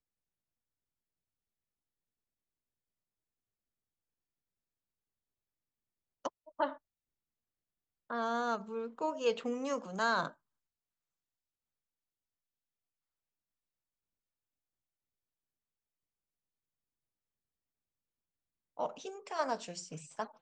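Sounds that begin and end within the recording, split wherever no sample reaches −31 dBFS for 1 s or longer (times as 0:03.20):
0:06.25–0:06.67
0:08.11–0:10.27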